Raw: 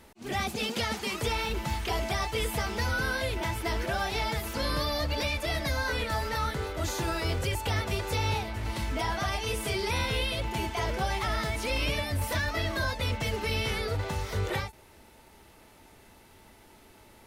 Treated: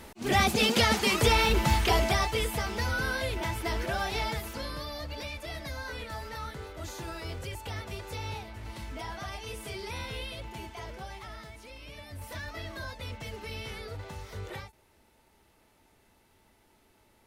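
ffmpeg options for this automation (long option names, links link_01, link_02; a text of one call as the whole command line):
ffmpeg -i in.wav -af "volume=16.5dB,afade=type=out:start_time=1.79:duration=0.71:silence=0.398107,afade=type=out:start_time=4.24:duration=0.48:silence=0.421697,afade=type=out:start_time=10.25:duration=1.57:silence=0.298538,afade=type=in:start_time=11.82:duration=0.62:silence=0.334965" out.wav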